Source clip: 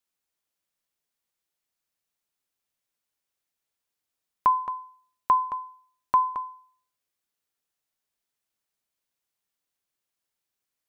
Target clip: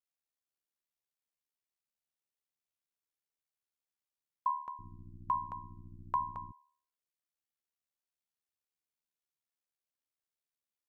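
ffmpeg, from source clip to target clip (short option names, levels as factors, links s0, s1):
-filter_complex "[0:a]asettb=1/sr,asplit=3[s0][s1][s2];[s0]atrim=end=4.794[s3];[s1]atrim=start=4.79:end=6.52,asetpts=PTS-STARTPTS,afade=t=in:d=0.004:c=qsin,afade=t=out:st=1.726:d=0.004:c=qsin,aeval=exprs='val(0)+0.0141*(sin(2*PI*60*n/s)+sin(2*PI*2*60*n/s)/2+sin(2*PI*3*60*n/s)/3+sin(2*PI*4*60*n/s)/4+sin(2*PI*5*60*n/s)/5)':c=same[s4];[s2]atrim=start=6.516[s5];[s3][s4]acrossfade=d=0.004:c1=hsin:c2=qsin[s6];[s6][s5]acrossfade=d=0.004:c1=qsin:c2=hsin,aeval=exprs='val(0)*sin(2*PI*37*n/s)':c=same,volume=0.355"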